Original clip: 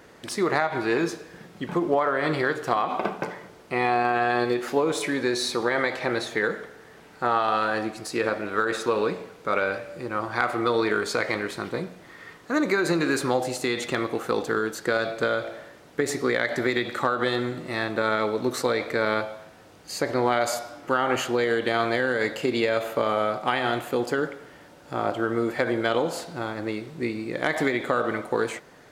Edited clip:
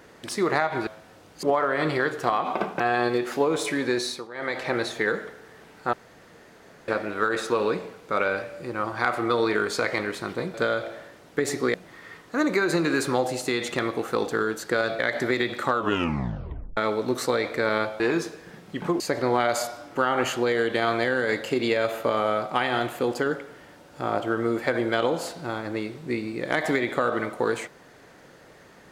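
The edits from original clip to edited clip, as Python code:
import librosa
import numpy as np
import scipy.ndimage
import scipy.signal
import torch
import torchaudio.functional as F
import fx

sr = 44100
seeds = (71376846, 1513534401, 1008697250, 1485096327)

y = fx.edit(x, sr, fx.swap(start_s=0.87, length_s=1.0, other_s=19.36, other_length_s=0.56),
    fx.cut(start_s=3.24, length_s=0.92),
    fx.fade_down_up(start_s=5.33, length_s=0.65, db=-18.0, fade_s=0.31),
    fx.room_tone_fill(start_s=7.29, length_s=0.95),
    fx.move(start_s=15.15, length_s=1.2, to_s=11.9),
    fx.tape_stop(start_s=17.09, length_s=1.04), tone=tone)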